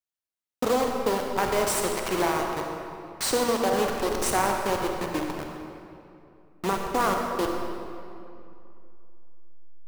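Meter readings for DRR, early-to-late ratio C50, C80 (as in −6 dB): 1.5 dB, 2.0 dB, 3.5 dB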